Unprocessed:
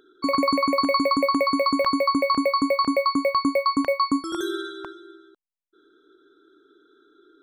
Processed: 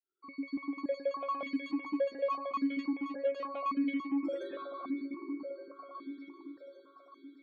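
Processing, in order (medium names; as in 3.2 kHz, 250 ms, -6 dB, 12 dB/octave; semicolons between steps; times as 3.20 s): fade-in on the opening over 1.37 s; delay with an opening low-pass 390 ms, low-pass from 400 Hz, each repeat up 1 oct, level -6 dB; saturation -23 dBFS, distortion -9 dB; spectral gate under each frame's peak -30 dB strong; stepped vowel filter 3.5 Hz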